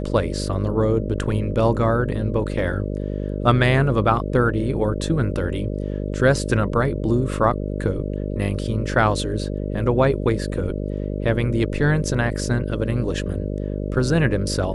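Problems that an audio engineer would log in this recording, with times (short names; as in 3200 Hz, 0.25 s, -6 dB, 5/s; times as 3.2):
buzz 50 Hz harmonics 12 -26 dBFS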